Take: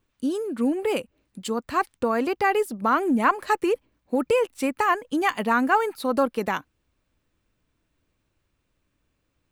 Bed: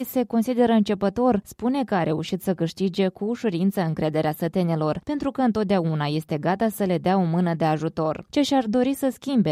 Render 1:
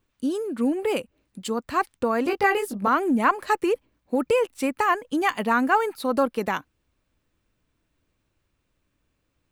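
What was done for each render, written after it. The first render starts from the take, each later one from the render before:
0:02.24–0:02.88: double-tracking delay 20 ms −3 dB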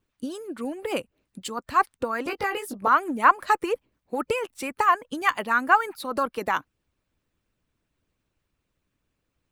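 dynamic equaliser 1,200 Hz, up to +5 dB, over −33 dBFS, Q 1.4
harmonic and percussive parts rebalanced harmonic −10 dB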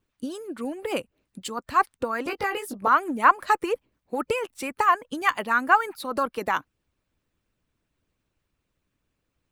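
no processing that can be heard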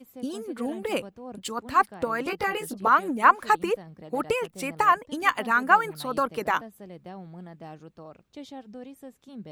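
mix in bed −21 dB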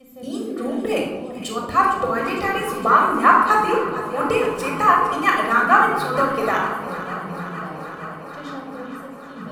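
on a send: delay that swaps between a low-pass and a high-pass 229 ms, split 950 Hz, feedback 88%, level −12.5 dB
on the sum: rectangular room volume 3,400 cubic metres, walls furnished, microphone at 6.2 metres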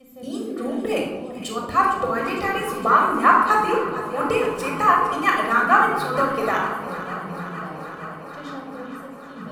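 level −1.5 dB

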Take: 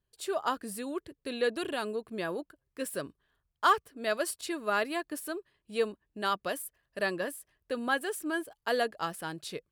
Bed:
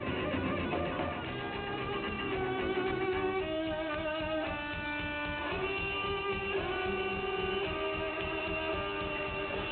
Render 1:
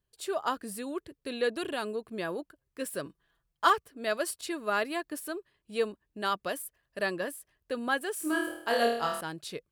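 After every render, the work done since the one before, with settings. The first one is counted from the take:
0:03.05–0:03.70: comb filter 6 ms
0:08.14–0:09.21: flutter between parallel walls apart 4.4 metres, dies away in 0.65 s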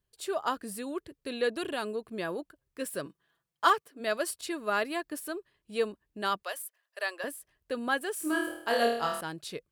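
0:03.06–0:03.99: high-pass filter 110 Hz → 230 Hz
0:06.43–0:07.24: Bessel high-pass filter 740 Hz, order 6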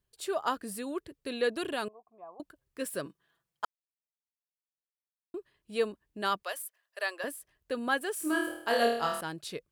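0:01.88–0:02.40: formant resonators in series a
0:03.65–0:05.34: silence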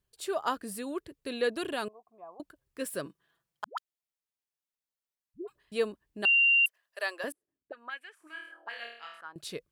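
0:03.64–0:05.72: all-pass dispersion highs, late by 136 ms, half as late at 400 Hz
0:06.25–0:06.66: beep over 2,770 Hz −19.5 dBFS
0:07.32–0:09.36: envelope filter 230–2,300 Hz, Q 4.2, up, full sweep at −28 dBFS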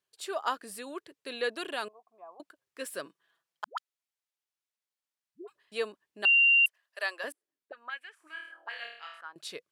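meter weighting curve A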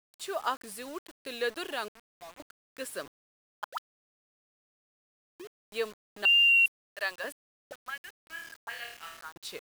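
tape wow and flutter 17 cents
bit-depth reduction 8 bits, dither none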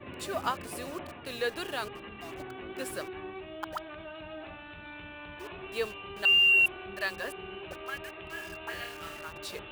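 mix in bed −9 dB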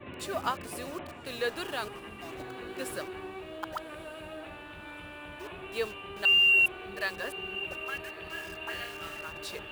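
feedback delay with all-pass diffusion 1,212 ms, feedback 59%, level −16 dB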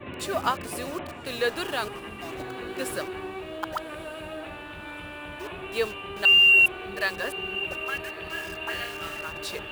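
level +5.5 dB

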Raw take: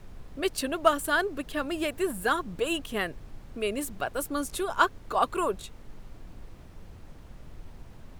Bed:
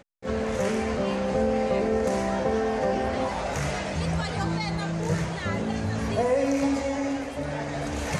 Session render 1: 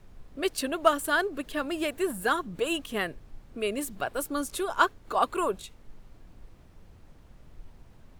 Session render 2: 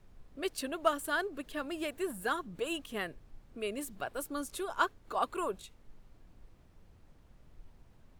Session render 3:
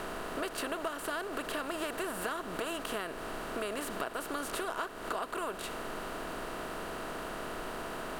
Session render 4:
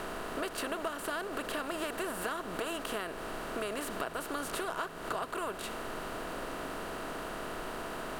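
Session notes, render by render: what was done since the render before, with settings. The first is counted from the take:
noise reduction from a noise print 6 dB
level −7 dB
compressor on every frequency bin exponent 0.4; downward compressor 12 to 1, threshold −32 dBFS, peak gain reduction 13.5 dB
mix in bed −28.5 dB

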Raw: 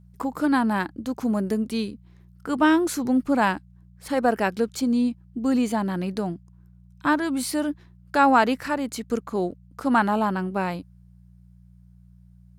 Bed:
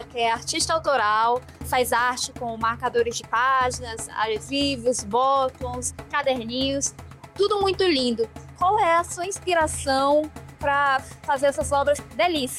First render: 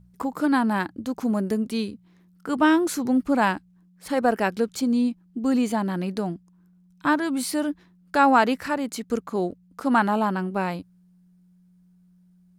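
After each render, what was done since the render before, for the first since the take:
hum removal 60 Hz, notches 2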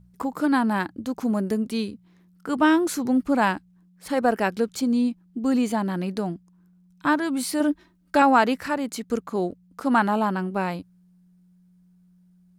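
0:07.60–0:08.22: comb filter 3.2 ms, depth 77%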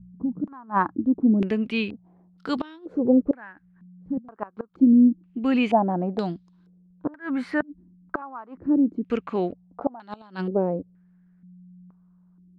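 gate with flip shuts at −13 dBFS, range −27 dB
low-pass on a step sequencer 2.1 Hz 210–4,000 Hz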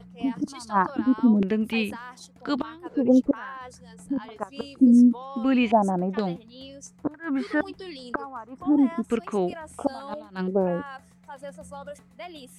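mix in bed −19 dB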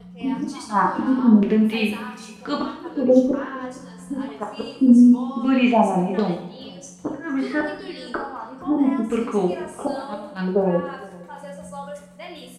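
single-tap delay 462 ms −22 dB
coupled-rooms reverb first 0.56 s, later 1.9 s, DRR −2 dB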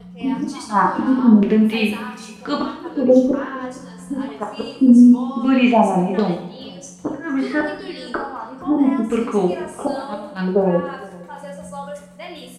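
level +3 dB
brickwall limiter −2 dBFS, peak gain reduction 2 dB

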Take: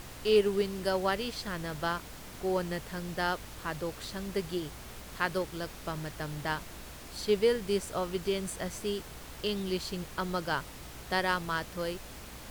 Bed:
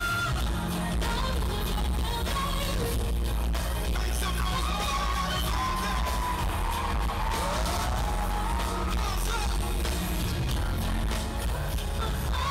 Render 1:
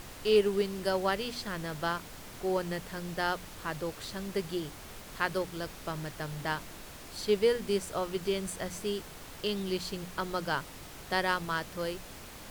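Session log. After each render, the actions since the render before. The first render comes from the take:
hum removal 60 Hz, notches 5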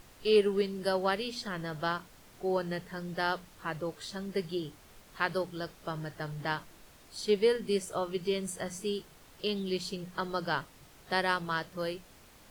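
noise reduction from a noise print 10 dB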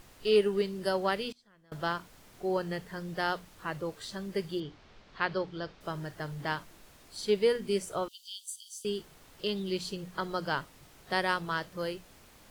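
0:01.32–0:01.72: gate with flip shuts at −39 dBFS, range −26 dB
0:04.60–0:05.81: low-pass filter 5,000 Hz 24 dB per octave
0:08.08–0:08.85: Butterworth high-pass 3,000 Hz 96 dB per octave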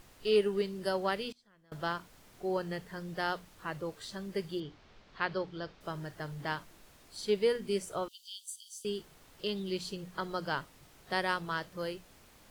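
level −2.5 dB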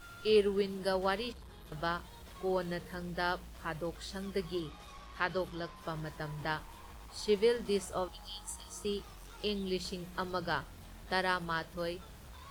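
mix in bed −23.5 dB

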